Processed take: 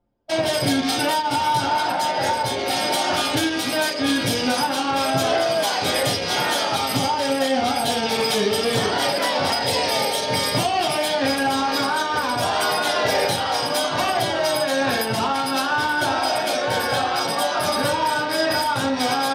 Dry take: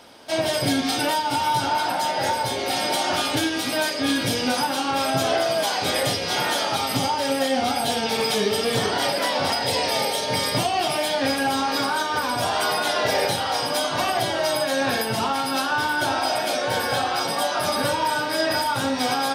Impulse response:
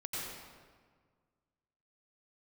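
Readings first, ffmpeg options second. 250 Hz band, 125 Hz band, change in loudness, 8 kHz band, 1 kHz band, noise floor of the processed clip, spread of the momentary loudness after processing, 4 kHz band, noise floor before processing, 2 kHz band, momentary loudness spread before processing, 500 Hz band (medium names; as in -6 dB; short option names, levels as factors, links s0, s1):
+2.0 dB, +2.0 dB, +1.5 dB, +1.0 dB, +2.0 dB, -25 dBFS, 2 LU, +1.5 dB, -27 dBFS, +1.5 dB, 2 LU, +2.0 dB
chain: -af "acontrast=68,anlmdn=1580,volume=0.596"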